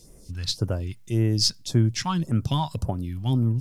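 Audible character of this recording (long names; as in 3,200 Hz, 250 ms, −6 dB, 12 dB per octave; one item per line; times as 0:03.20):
phaser sweep stages 2, 1.8 Hz, lowest notch 390–4,000 Hz
a quantiser's noise floor 12 bits, dither none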